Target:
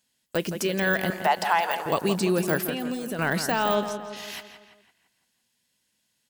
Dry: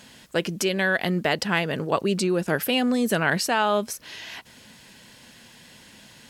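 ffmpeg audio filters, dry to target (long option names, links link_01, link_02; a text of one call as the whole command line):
ffmpeg -i in.wav -filter_complex "[0:a]deesser=1,agate=range=-30dB:threshold=-38dB:ratio=16:detection=peak,asettb=1/sr,asplit=3[link_01][link_02][link_03];[link_01]atrim=end=2.614[link_04];[link_02]atrim=start=2.61:end=3.19,asetpts=PTS-STARTPTS,afade=type=in:duration=0.004:curve=qsin,afade=type=out:start_time=0.576:duration=0.004:curve=qsin,acompressor=threshold=-28dB:ratio=6[link_05];[link_03]atrim=start=3.186[link_06];[link_04][link_05]acrossfade=duration=0.004:curve1=hsin:curve2=qsin[link_07];[link_07][link_06]acrossfade=duration=0.004:curve1=qsin:curve2=hsin,asplit=3[link_08][link_09][link_10];[link_08]afade=type=out:start_time=3.74:duration=0.02[link_11];[link_09]lowpass=6100,afade=type=in:start_time=3.74:duration=0.02,afade=type=out:start_time=4.15:duration=0.02[link_12];[link_10]afade=type=in:start_time=4.15:duration=0.02[link_13];[link_11][link_12][link_13]amix=inputs=3:normalize=0,crystalizer=i=3:c=0,asettb=1/sr,asplit=3[link_14][link_15][link_16];[link_14]atrim=end=1.104[link_17];[link_15]atrim=start=1.1:end=1.86,asetpts=PTS-STARTPTS,afade=type=in:duration=0.004:curve=qsin,afade=type=out:start_time=0.756:duration=0.004:curve=qsin,highpass=frequency=840:width_type=q:width=4.9[link_18];[link_16]atrim=start=1.856[link_19];[link_17][link_18]acrossfade=duration=0.004:curve1=hsin:curve2=qsin[link_20];[link_20][link_19]acrossfade=duration=0.004:curve1=qsin:curve2=hsin,asplit=2[link_21][link_22];[link_22]adelay=168,lowpass=frequency=3700:poles=1,volume=-9dB,asplit=2[link_23][link_24];[link_24]adelay=168,lowpass=frequency=3700:poles=1,volume=0.53,asplit=2[link_25][link_26];[link_26]adelay=168,lowpass=frequency=3700:poles=1,volume=0.53,asplit=2[link_27][link_28];[link_28]adelay=168,lowpass=frequency=3700:poles=1,volume=0.53,asplit=2[link_29][link_30];[link_30]adelay=168,lowpass=frequency=3700:poles=1,volume=0.53,asplit=2[link_31][link_32];[link_32]adelay=168,lowpass=frequency=3700:poles=1,volume=0.53[link_33];[link_21][link_23][link_25][link_27][link_29][link_31][link_33]amix=inputs=7:normalize=0,volume=-1dB" out.wav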